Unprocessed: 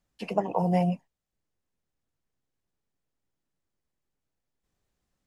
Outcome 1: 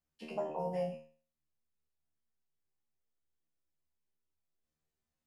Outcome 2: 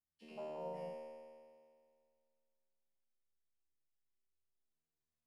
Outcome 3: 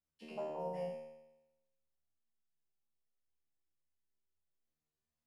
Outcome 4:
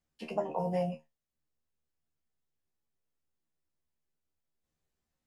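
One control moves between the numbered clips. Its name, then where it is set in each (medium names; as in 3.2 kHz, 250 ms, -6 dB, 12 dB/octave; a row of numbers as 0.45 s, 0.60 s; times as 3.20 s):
feedback comb, decay: 0.41 s, 2.1 s, 0.97 s, 0.17 s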